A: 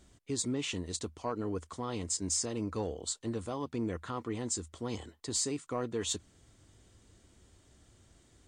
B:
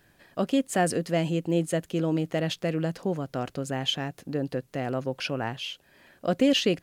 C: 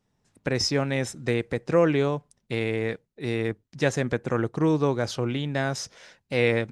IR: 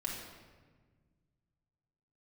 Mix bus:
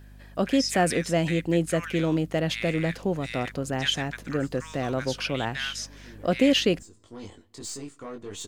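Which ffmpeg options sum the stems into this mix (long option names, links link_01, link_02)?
-filter_complex "[0:a]aeval=exprs='if(lt(val(0),0),0.708*val(0),val(0))':channel_layout=same,flanger=delay=19:depth=2.3:speed=0.46,asoftclip=type=tanh:threshold=-31.5dB,adelay=2300,volume=1.5dB,asplit=2[link_01][link_02];[link_02]volume=-23dB[link_03];[1:a]aeval=exprs='val(0)+0.00398*(sin(2*PI*50*n/s)+sin(2*PI*2*50*n/s)/2+sin(2*PI*3*50*n/s)/3+sin(2*PI*4*50*n/s)/4+sin(2*PI*5*50*n/s)/5)':channel_layout=same,volume=1.5dB[link_04];[2:a]dynaudnorm=framelen=130:gausssize=9:maxgain=11.5dB,highpass=frequency=1400:width=0.5412,highpass=frequency=1400:width=1.3066,volume=-9.5dB,asplit=2[link_05][link_06];[link_06]apad=whole_len=475322[link_07];[link_01][link_07]sidechaincompress=threshold=-55dB:ratio=8:attack=9.7:release=390[link_08];[3:a]atrim=start_sample=2205[link_09];[link_03][link_09]afir=irnorm=-1:irlink=0[link_10];[link_08][link_04][link_05][link_10]amix=inputs=4:normalize=0"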